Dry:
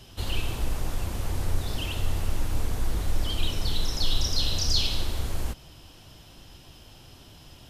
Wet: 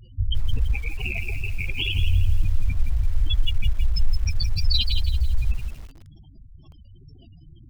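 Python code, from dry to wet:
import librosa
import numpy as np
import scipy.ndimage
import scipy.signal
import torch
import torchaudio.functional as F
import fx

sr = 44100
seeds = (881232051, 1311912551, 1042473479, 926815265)

p1 = fx.rattle_buzz(x, sr, strikes_db=-36.0, level_db=-19.0)
p2 = fx.chorus_voices(p1, sr, voices=2, hz=0.5, base_ms=25, depth_ms=4.6, mix_pct=25)
p3 = fx.spec_gate(p2, sr, threshold_db=-30, keep='strong')
p4 = fx.high_shelf(p3, sr, hz=2900.0, db=-10.0, at=(2.81, 3.29))
p5 = p4 + fx.echo_feedback(p4, sr, ms=81, feedback_pct=44, wet_db=-16, dry=0)
p6 = fx.wow_flutter(p5, sr, seeds[0], rate_hz=2.1, depth_cents=120.0)
p7 = fx.quant_companded(p6, sr, bits=2)
p8 = p6 + (p7 * librosa.db_to_amplitude(-7.0))
p9 = fx.low_shelf(p8, sr, hz=240.0, db=-8.0, at=(0.73, 1.95))
p10 = fx.spec_gate(p9, sr, threshold_db=-10, keep='strong')
p11 = fx.echo_crushed(p10, sr, ms=167, feedback_pct=35, bits=8, wet_db=-7)
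y = p11 * librosa.db_to_amplitude(6.5)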